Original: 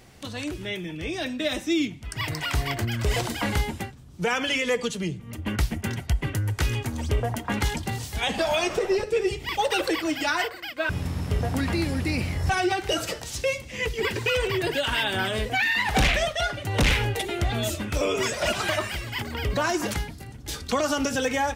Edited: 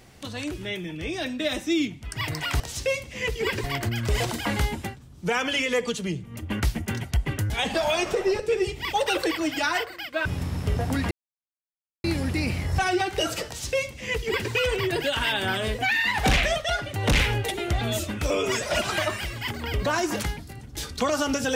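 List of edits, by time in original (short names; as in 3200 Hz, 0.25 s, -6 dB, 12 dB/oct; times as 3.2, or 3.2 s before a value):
6.46–8.14 cut
11.75 insert silence 0.93 s
13.18–14.22 copy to 2.6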